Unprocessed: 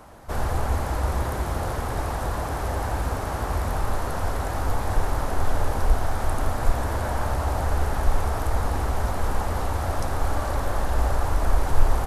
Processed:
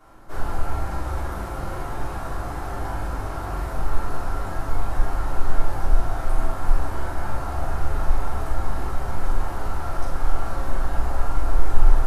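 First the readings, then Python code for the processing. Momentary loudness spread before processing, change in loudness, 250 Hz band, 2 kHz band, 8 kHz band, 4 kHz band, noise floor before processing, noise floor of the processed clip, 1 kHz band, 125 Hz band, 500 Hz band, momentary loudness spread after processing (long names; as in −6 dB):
3 LU, −2.0 dB, −2.0 dB, −2.5 dB, −6.5 dB, −5.5 dB, −29 dBFS, −30 dBFS, −2.5 dB, −3.0 dB, −4.0 dB, 4 LU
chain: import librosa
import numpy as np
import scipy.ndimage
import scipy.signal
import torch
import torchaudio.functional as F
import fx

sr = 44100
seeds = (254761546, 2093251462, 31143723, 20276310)

y = fx.peak_eq(x, sr, hz=1400.0, db=3.5, octaves=1.4)
y = fx.doubler(y, sr, ms=41.0, db=-4)
y = fx.room_shoebox(y, sr, seeds[0], volume_m3=160.0, walls='furnished', distance_m=3.2)
y = y * 10.0 ** (-13.5 / 20.0)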